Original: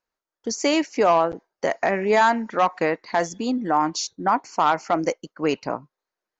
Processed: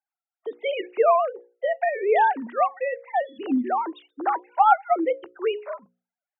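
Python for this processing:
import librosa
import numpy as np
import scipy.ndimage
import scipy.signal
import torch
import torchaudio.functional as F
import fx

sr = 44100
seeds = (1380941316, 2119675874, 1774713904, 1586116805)

y = fx.sine_speech(x, sr)
y = fx.hum_notches(y, sr, base_hz=60, count=9)
y = fx.small_body(y, sr, hz=(230.0, 470.0, 780.0, 1400.0), ring_ms=45, db=12, at=(4.47, 4.92), fade=0.02)
y = y * librosa.db_to_amplitude(-2.0)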